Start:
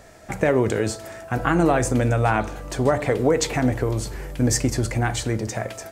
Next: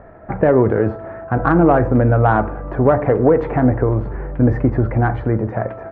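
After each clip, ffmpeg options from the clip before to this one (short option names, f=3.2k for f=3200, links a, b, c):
-af "lowpass=f=1.5k:w=0.5412,lowpass=f=1.5k:w=1.3066,acontrast=34,volume=1.5dB"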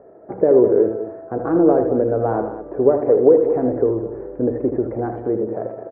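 -filter_complex "[0:a]bandpass=f=420:t=q:w=2.9:csg=0,asplit=2[a][b];[b]aecho=0:1:78.72|207:0.398|0.251[c];[a][c]amix=inputs=2:normalize=0,volume=3.5dB"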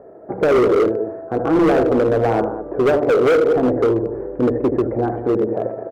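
-af "asoftclip=type=hard:threshold=-15.5dB,volume=4dB"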